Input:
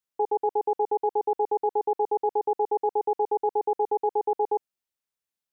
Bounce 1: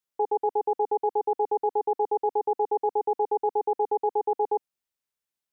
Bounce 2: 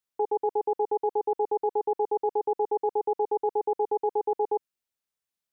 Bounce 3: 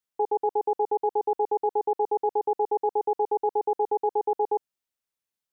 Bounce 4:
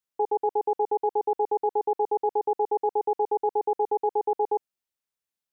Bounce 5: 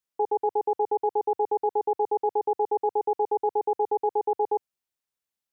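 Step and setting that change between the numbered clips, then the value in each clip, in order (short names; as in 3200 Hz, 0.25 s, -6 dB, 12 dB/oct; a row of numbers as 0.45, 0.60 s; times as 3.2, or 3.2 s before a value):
dynamic EQ, frequency: 270, 760, 2200, 5800, 100 Hz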